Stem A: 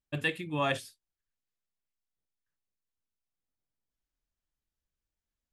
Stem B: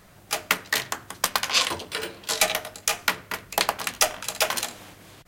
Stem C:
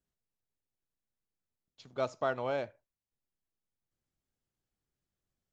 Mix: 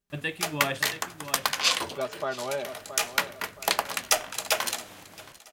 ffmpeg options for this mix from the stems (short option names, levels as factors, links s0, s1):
-filter_complex "[0:a]volume=0.891,asplit=2[s0][s1];[s1]volume=0.316[s2];[1:a]lowshelf=f=140:g=-6,adelay=100,volume=0.794,asplit=2[s3][s4];[s4]volume=0.0841[s5];[2:a]aecho=1:1:5:0.79,volume=0.944,asplit=3[s6][s7][s8];[s7]volume=0.299[s9];[s8]apad=whole_len=237228[s10];[s3][s10]sidechaincompress=threshold=0.00631:ratio=8:attack=11:release=130[s11];[s2][s5][s9]amix=inputs=3:normalize=0,aecho=0:1:673|1346|2019|2692|3365:1|0.38|0.144|0.0549|0.0209[s12];[s0][s11][s6][s12]amix=inputs=4:normalize=0"